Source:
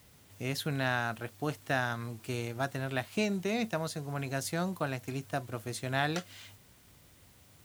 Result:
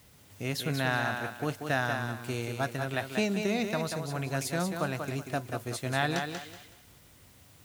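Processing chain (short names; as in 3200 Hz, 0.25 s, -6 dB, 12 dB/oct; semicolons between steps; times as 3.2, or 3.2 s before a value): thinning echo 0.187 s, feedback 29%, high-pass 160 Hz, level -5.5 dB; gain +1.5 dB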